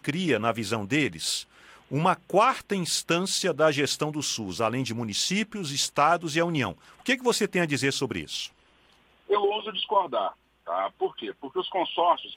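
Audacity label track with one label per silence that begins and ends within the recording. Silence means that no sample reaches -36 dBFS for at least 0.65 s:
8.470000	9.300000	silence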